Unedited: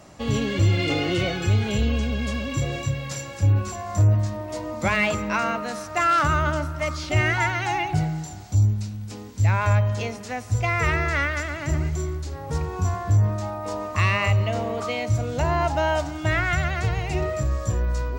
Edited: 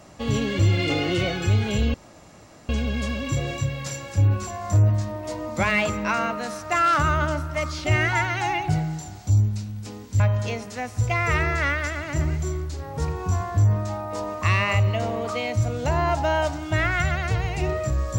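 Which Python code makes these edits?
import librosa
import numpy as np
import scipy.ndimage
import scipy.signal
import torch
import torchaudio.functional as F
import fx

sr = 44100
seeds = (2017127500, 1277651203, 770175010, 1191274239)

y = fx.edit(x, sr, fx.insert_room_tone(at_s=1.94, length_s=0.75),
    fx.cut(start_s=9.45, length_s=0.28), tone=tone)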